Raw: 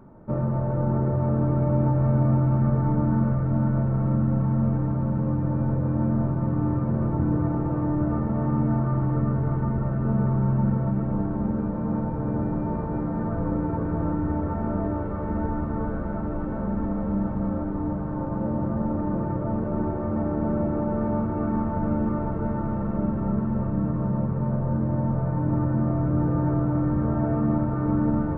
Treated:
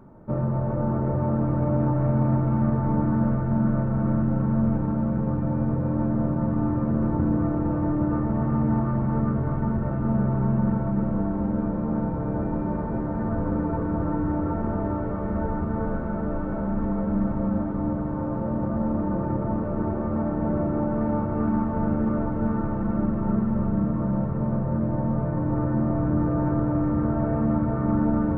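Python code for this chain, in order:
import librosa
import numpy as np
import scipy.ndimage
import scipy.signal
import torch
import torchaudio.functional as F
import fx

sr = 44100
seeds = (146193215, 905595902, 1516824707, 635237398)

y = fx.echo_feedback(x, sr, ms=391, feedback_pct=53, wet_db=-7.5)
y = fx.doppler_dist(y, sr, depth_ms=0.11)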